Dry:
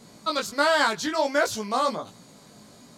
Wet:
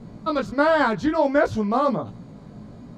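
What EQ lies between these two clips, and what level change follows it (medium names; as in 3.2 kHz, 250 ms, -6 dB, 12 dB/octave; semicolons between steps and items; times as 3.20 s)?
RIAA curve playback; treble shelf 2.9 kHz -8.5 dB; +3.0 dB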